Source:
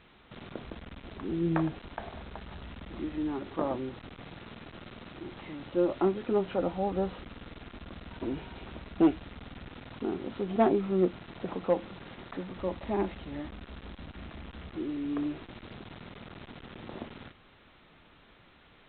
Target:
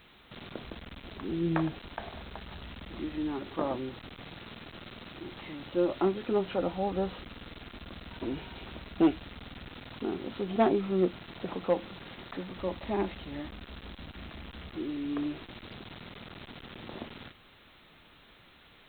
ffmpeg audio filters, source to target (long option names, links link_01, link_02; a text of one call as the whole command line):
ffmpeg -i in.wav -af "aemphasis=mode=production:type=75fm" out.wav